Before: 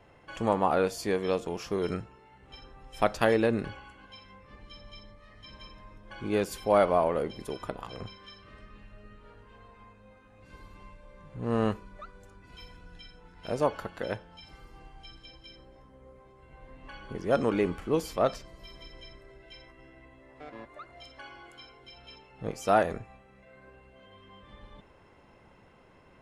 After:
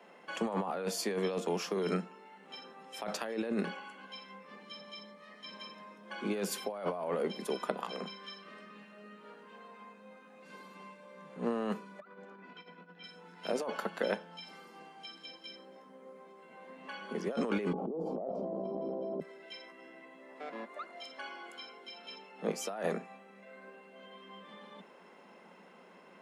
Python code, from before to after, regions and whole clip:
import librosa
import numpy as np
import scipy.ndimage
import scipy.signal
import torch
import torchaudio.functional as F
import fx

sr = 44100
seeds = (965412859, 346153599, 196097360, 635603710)

y = fx.chain(x, sr, fx.lowpass(hz=2400.0, slope=12),
    fx.over_compress(threshold_db=-52.0, ratio=-1.0), at=(12.0, 13.04))
y = fx.chain(y, sr, fx.ellip_bandpass(low_hz=130.0, high_hz=770.0, order=3, stop_db=40),
    fx.env_flatten(amount_pct=100), at=(17.73, 19.2))
y = scipy.signal.sosfilt(scipy.signal.butter(16, 170.0, 'highpass', fs=sr, output='sos'), y)
y = fx.peak_eq(y, sr, hz=300.0, db=-7.5, octaves=0.24)
y = fx.over_compress(y, sr, threshold_db=-32.0, ratio=-1.0)
y = y * 10.0 ** (-2.5 / 20.0)